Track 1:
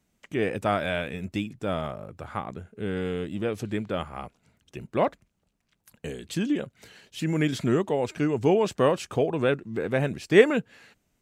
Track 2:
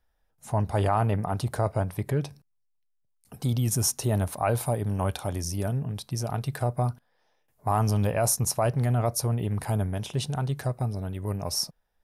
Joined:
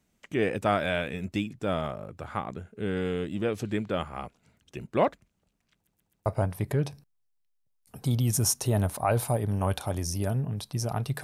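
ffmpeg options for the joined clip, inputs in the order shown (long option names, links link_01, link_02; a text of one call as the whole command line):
ffmpeg -i cue0.wav -i cue1.wav -filter_complex "[0:a]apad=whole_dur=11.23,atrim=end=11.23,asplit=4[link_01][link_02][link_03][link_04];[link_01]atrim=end=5.872[link_05];[link_02]atrim=start=5.738:end=5.872[link_06];[link_03]atrim=start=5.738:end=5.872[link_07];[link_04]atrim=start=5.738:end=5.872[link_08];[1:a]atrim=start=1.638:end=6.61[link_09];[link_05][link_06]acrossfade=duration=0.004:curve1=hsin:curve2=hsin[link_10];[link_10][link_07]acrossfade=duration=0.004:curve1=hsin:curve2=hsin[link_11];[link_11][link_08]acrossfade=duration=0.004:curve1=hsin:curve2=hsin[link_12];[link_12][link_09]acrossfade=duration=0.004:curve1=hsin:curve2=hsin" out.wav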